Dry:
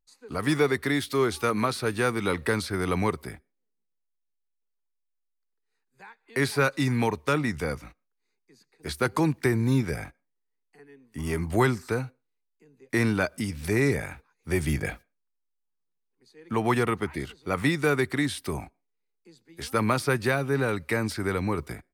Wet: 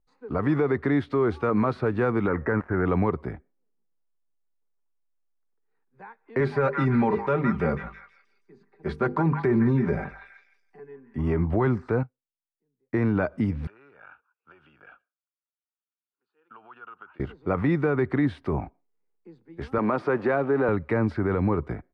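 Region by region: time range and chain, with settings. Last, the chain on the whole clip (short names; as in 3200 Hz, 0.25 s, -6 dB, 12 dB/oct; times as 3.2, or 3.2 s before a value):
2.27–2.86 switching dead time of 0.13 ms + resonant high shelf 2500 Hz -11.5 dB, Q 3
6.4–11.18 notches 50/100/150/200/250/300/350/400/450/500 Hz + comb 5.1 ms, depth 67% + delay with a stepping band-pass 0.164 s, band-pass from 1300 Hz, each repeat 0.7 oct, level -6.5 dB
12.03–12.97 bell 73 Hz +4 dB 2.3 oct + upward expander 2.5:1, over -40 dBFS
13.67–17.2 compressor 16:1, threshold -30 dBFS + double band-pass 2000 Hz, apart 0.97 oct
19.78–20.69 zero-crossing step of -35.5 dBFS + HPF 260 Hz + high shelf 4200 Hz -6.5 dB
whole clip: LPF 1200 Hz 12 dB/oct; limiter -20.5 dBFS; gain +6 dB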